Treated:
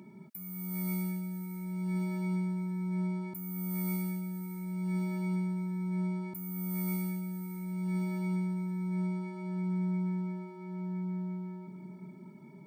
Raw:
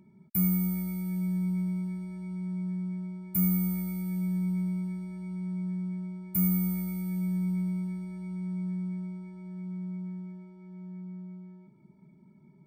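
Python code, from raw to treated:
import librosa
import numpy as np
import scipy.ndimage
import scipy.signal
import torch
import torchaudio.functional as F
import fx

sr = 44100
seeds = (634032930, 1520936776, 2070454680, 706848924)

y = scipy.signal.sosfilt(scipy.signal.bessel(2, 260.0, 'highpass', norm='mag', fs=sr, output='sos'), x)
y = fx.over_compress(y, sr, threshold_db=-41.0, ratio=-1.0)
y = fx.echo_feedback(y, sr, ms=622, feedback_pct=34, wet_db=-12.5)
y = F.gain(torch.from_numpy(y), 7.0).numpy()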